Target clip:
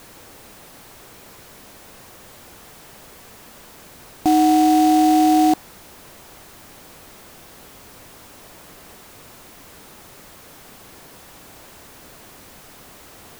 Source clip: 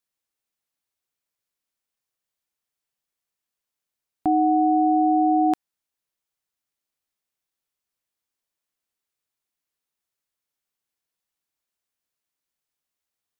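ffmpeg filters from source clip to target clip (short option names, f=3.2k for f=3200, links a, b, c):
-af "aeval=exprs='val(0)+0.5*0.0266*sgn(val(0))':c=same,tiltshelf=f=1.5k:g=7,acrusher=bits=3:mode=log:mix=0:aa=0.000001,volume=-2dB"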